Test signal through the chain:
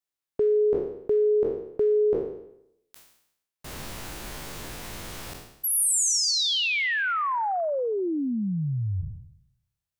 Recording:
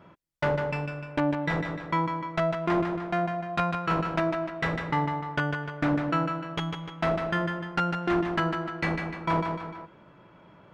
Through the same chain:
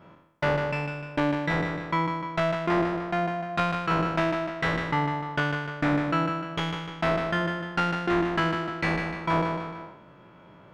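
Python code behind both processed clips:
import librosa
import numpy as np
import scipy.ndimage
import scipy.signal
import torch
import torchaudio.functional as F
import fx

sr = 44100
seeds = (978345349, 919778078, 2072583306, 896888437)

y = fx.spec_trails(x, sr, decay_s=0.79)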